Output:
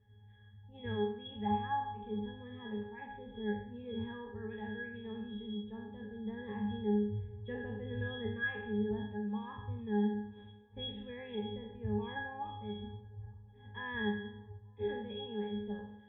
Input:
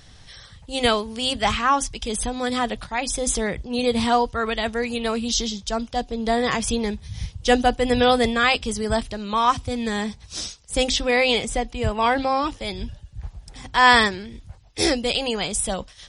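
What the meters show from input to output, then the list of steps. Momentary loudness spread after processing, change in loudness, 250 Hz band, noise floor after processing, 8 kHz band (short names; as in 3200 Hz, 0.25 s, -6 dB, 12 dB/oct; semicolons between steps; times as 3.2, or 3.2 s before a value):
13 LU, -17.0 dB, -11.5 dB, -58 dBFS, under -40 dB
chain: spectral trails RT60 0.72 s; steep low-pass 3200 Hz 72 dB/oct; octave resonator G#, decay 0.47 s; band-limited delay 0.439 s, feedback 52%, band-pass 550 Hz, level -23 dB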